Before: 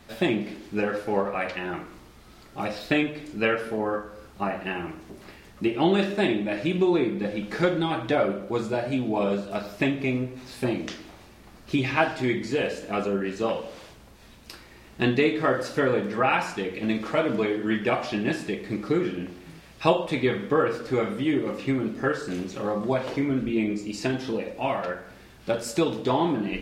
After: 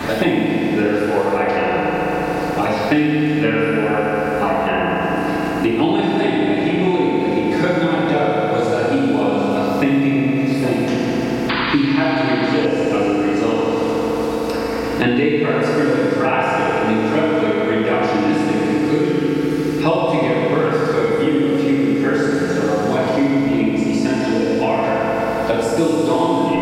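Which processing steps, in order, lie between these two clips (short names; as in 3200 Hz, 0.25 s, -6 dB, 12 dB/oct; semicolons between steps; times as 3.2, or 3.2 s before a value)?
FDN reverb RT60 3.7 s, high-frequency decay 0.6×, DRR -8 dB; painted sound noise, 11.49–12.66, 830–4900 Hz -26 dBFS; three-band squash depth 100%; gain -1.5 dB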